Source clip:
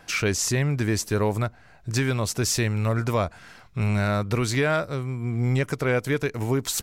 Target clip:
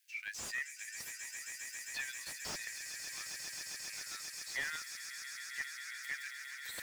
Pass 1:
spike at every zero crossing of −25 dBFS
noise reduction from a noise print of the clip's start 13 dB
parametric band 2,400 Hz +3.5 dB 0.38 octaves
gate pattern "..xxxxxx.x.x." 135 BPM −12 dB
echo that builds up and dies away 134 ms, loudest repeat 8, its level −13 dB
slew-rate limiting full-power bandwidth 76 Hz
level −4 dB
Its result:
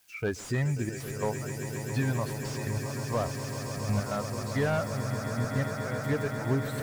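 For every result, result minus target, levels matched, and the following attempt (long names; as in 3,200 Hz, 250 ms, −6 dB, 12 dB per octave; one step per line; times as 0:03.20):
2,000 Hz band −7.5 dB; spike at every zero crossing: distortion +9 dB
spike at every zero crossing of −25 dBFS
noise reduction from a noise print of the clip's start 13 dB
elliptic high-pass filter 1,800 Hz, stop band 70 dB
parametric band 2,400 Hz +3.5 dB 0.38 octaves
gate pattern "..xxxxxx.x.x." 135 BPM −12 dB
echo that builds up and dies away 134 ms, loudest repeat 8, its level −13 dB
slew-rate limiting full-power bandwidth 76 Hz
level −4 dB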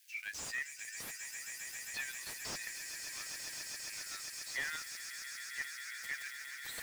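spike at every zero crossing: distortion +9 dB
spike at every zero crossing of −34 dBFS
noise reduction from a noise print of the clip's start 13 dB
elliptic high-pass filter 1,800 Hz, stop band 70 dB
parametric band 2,400 Hz +3.5 dB 0.38 octaves
gate pattern "..xxxxxx.x.x." 135 BPM −12 dB
echo that builds up and dies away 134 ms, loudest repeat 8, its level −13 dB
slew-rate limiting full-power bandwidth 76 Hz
level −4 dB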